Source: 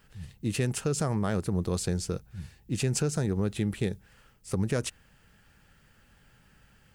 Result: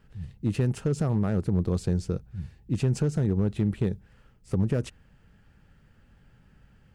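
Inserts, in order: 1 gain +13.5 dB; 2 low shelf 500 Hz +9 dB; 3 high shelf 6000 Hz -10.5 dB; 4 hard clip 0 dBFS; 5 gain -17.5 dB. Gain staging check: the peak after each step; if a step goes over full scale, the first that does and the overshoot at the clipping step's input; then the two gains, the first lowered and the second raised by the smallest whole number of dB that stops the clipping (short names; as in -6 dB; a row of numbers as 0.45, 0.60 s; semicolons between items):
-2.5, +3.5, +3.5, 0.0, -17.5 dBFS; step 2, 3.5 dB; step 1 +9.5 dB, step 5 -13.5 dB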